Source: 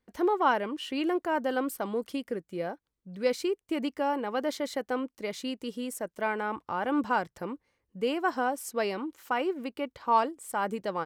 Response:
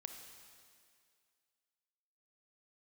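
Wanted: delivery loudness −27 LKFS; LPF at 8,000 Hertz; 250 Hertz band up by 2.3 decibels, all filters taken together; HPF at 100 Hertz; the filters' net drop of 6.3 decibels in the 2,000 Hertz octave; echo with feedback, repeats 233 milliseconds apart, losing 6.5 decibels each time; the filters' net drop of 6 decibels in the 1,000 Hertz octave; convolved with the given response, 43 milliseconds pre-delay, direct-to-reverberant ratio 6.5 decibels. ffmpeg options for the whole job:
-filter_complex "[0:a]highpass=100,lowpass=8000,equalizer=frequency=250:width_type=o:gain=3.5,equalizer=frequency=1000:width_type=o:gain=-6.5,equalizer=frequency=2000:width_type=o:gain=-6,aecho=1:1:233|466|699|932|1165|1398:0.473|0.222|0.105|0.0491|0.0231|0.0109,asplit=2[link_01][link_02];[1:a]atrim=start_sample=2205,adelay=43[link_03];[link_02][link_03]afir=irnorm=-1:irlink=0,volume=-2.5dB[link_04];[link_01][link_04]amix=inputs=2:normalize=0,volume=3.5dB"

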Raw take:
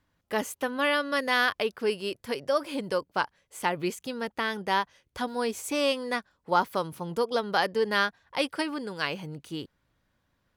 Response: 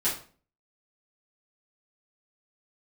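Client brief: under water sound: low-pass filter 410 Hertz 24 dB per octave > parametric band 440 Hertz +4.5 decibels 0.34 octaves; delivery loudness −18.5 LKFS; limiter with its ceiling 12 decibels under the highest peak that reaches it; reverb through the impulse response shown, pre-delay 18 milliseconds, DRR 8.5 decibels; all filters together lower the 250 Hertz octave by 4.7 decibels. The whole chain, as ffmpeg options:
-filter_complex "[0:a]equalizer=frequency=250:width_type=o:gain=-6,alimiter=limit=-22dB:level=0:latency=1,asplit=2[link_01][link_02];[1:a]atrim=start_sample=2205,adelay=18[link_03];[link_02][link_03]afir=irnorm=-1:irlink=0,volume=-17.5dB[link_04];[link_01][link_04]amix=inputs=2:normalize=0,lowpass=frequency=410:width=0.5412,lowpass=frequency=410:width=1.3066,equalizer=frequency=440:width_type=o:width=0.34:gain=4.5,volume=21dB"

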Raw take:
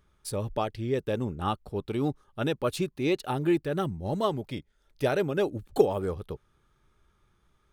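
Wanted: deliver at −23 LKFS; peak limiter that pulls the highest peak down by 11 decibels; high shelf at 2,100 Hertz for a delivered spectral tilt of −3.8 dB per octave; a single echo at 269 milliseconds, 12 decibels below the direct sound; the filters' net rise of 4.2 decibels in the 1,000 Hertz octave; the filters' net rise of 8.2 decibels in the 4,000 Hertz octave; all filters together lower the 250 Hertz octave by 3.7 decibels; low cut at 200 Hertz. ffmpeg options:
ffmpeg -i in.wav -af "highpass=200,equalizer=frequency=250:width_type=o:gain=-4.5,equalizer=frequency=1000:width_type=o:gain=4,highshelf=frequency=2100:gain=7,equalizer=frequency=4000:width_type=o:gain=3.5,alimiter=limit=-18.5dB:level=0:latency=1,aecho=1:1:269:0.251,volume=9dB" out.wav

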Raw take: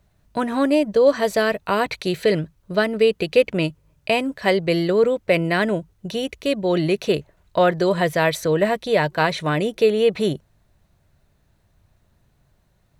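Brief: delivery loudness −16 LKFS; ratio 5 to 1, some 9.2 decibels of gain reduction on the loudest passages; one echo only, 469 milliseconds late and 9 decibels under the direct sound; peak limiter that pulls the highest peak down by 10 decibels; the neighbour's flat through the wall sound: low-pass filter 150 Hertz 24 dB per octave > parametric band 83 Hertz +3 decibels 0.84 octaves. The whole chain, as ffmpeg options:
ffmpeg -i in.wav -af "acompressor=threshold=-22dB:ratio=5,alimiter=limit=-19dB:level=0:latency=1,lowpass=frequency=150:width=0.5412,lowpass=frequency=150:width=1.3066,equalizer=frequency=83:width_type=o:width=0.84:gain=3,aecho=1:1:469:0.355,volume=27dB" out.wav

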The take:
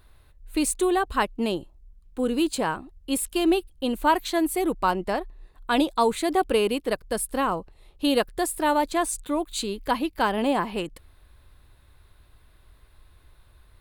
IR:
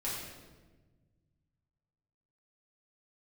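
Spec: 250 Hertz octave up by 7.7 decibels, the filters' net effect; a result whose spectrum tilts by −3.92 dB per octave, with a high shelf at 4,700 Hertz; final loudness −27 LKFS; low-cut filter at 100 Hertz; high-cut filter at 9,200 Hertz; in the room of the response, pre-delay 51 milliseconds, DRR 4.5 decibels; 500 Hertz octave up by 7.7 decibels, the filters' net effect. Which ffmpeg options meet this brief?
-filter_complex "[0:a]highpass=100,lowpass=9200,equalizer=frequency=250:width_type=o:gain=7,equalizer=frequency=500:width_type=o:gain=7.5,highshelf=frequency=4700:gain=4.5,asplit=2[link_01][link_02];[1:a]atrim=start_sample=2205,adelay=51[link_03];[link_02][link_03]afir=irnorm=-1:irlink=0,volume=-8dB[link_04];[link_01][link_04]amix=inputs=2:normalize=0,volume=-9dB"

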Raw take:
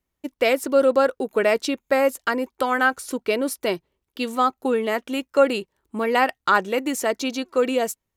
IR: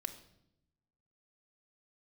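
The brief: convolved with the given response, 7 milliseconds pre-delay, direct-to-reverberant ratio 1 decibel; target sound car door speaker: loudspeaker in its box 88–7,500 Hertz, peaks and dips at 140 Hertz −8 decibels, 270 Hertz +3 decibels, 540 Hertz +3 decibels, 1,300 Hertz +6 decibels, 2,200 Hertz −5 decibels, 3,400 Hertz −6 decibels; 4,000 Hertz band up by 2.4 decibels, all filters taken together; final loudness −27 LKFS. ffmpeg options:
-filter_complex "[0:a]equalizer=frequency=4000:width_type=o:gain=7,asplit=2[link_01][link_02];[1:a]atrim=start_sample=2205,adelay=7[link_03];[link_02][link_03]afir=irnorm=-1:irlink=0,volume=0.5dB[link_04];[link_01][link_04]amix=inputs=2:normalize=0,highpass=88,equalizer=frequency=140:width_type=q:width=4:gain=-8,equalizer=frequency=270:width_type=q:width=4:gain=3,equalizer=frequency=540:width_type=q:width=4:gain=3,equalizer=frequency=1300:width_type=q:width=4:gain=6,equalizer=frequency=2200:width_type=q:width=4:gain=-5,equalizer=frequency=3400:width_type=q:width=4:gain=-6,lowpass=frequency=7500:width=0.5412,lowpass=frequency=7500:width=1.3066,volume=-9.5dB"

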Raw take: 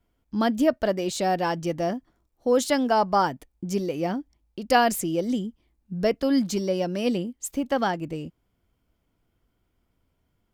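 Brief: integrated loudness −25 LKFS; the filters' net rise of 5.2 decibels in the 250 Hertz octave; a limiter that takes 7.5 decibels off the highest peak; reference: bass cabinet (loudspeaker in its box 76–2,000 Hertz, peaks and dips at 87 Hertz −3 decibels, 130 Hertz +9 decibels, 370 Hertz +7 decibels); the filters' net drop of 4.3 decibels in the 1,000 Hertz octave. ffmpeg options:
ffmpeg -i in.wav -af "equalizer=frequency=250:width_type=o:gain=4.5,equalizer=frequency=1000:width_type=o:gain=-7,alimiter=limit=-16dB:level=0:latency=1,highpass=frequency=76:width=0.5412,highpass=frequency=76:width=1.3066,equalizer=frequency=87:width_type=q:width=4:gain=-3,equalizer=frequency=130:width_type=q:width=4:gain=9,equalizer=frequency=370:width_type=q:width=4:gain=7,lowpass=frequency=2000:width=0.5412,lowpass=frequency=2000:width=1.3066" out.wav

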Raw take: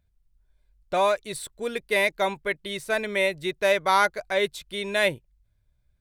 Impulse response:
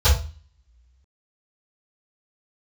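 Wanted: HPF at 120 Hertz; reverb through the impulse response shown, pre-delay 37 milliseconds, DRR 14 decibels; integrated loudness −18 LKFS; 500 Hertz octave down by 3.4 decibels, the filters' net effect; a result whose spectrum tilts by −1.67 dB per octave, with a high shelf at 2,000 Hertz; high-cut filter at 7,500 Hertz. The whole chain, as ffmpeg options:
-filter_complex "[0:a]highpass=120,lowpass=7500,equalizer=frequency=500:width_type=o:gain=-5,highshelf=frequency=2000:gain=7.5,asplit=2[link_01][link_02];[1:a]atrim=start_sample=2205,adelay=37[link_03];[link_02][link_03]afir=irnorm=-1:irlink=0,volume=-32dB[link_04];[link_01][link_04]amix=inputs=2:normalize=0,volume=5.5dB"

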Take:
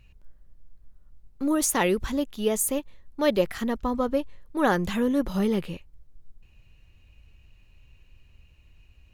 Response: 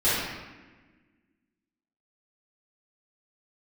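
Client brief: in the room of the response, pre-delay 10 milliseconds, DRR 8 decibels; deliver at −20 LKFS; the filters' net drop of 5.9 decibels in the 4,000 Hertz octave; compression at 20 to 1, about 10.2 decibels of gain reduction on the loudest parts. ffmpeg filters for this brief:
-filter_complex "[0:a]equalizer=frequency=4000:width_type=o:gain=-8.5,acompressor=threshold=-27dB:ratio=20,asplit=2[link_01][link_02];[1:a]atrim=start_sample=2205,adelay=10[link_03];[link_02][link_03]afir=irnorm=-1:irlink=0,volume=-23.5dB[link_04];[link_01][link_04]amix=inputs=2:normalize=0,volume=12.5dB"

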